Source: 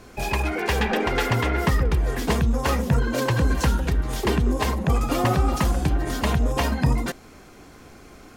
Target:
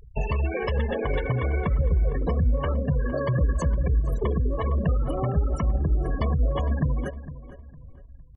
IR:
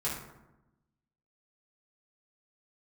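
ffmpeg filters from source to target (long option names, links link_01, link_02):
-filter_complex "[0:a]aemphasis=mode=production:type=50kf,acompressor=threshold=-24dB:ratio=10,aecho=1:1:1.9:0.42,asetrate=46722,aresample=44100,atempo=0.943874,tiltshelf=frequency=720:gain=4.5,afftfilt=real='re*gte(hypot(re,im),0.0501)':imag='im*gte(hypot(re,im),0.0501)':win_size=1024:overlap=0.75,asplit=2[link_01][link_02];[link_02]adelay=458,lowpass=frequency=2600:poles=1,volume=-14.5dB,asplit=2[link_03][link_04];[link_04]adelay=458,lowpass=frequency=2600:poles=1,volume=0.32,asplit=2[link_05][link_06];[link_06]adelay=458,lowpass=frequency=2600:poles=1,volume=0.32[link_07];[link_03][link_05][link_07]amix=inputs=3:normalize=0[link_08];[link_01][link_08]amix=inputs=2:normalize=0"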